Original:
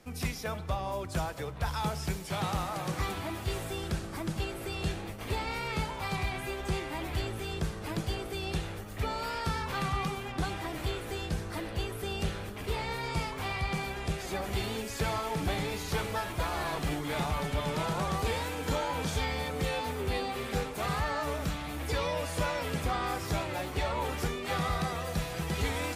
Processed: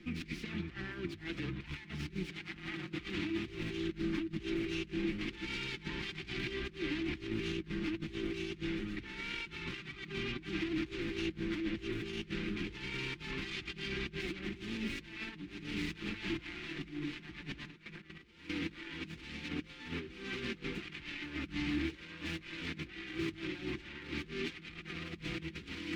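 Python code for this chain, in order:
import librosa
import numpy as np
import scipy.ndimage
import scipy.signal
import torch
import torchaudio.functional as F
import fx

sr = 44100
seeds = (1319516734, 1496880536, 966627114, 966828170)

y = fx.self_delay(x, sr, depth_ms=0.67)
y = y + 0.5 * np.pad(y, (int(5.7 * sr / 1000.0), 0))[:len(y)]
y = fx.over_compress(y, sr, threshold_db=-38.0, ratio=-0.5)
y = fx.hum_notches(y, sr, base_hz=50, count=2)
y = fx.step_gate(y, sr, bpm=189, pattern='.xx.x...', floor_db=-12.0, edge_ms=4.5, at=(17.7, 18.55), fade=0.02)
y = fx.curve_eq(y, sr, hz=(150.0, 320.0, 580.0, 910.0, 2300.0, 3800.0, 13000.0), db=(0, 10, -19, -13, 6, 0, -26))
y = y * 10.0 ** (-3.5 / 20.0)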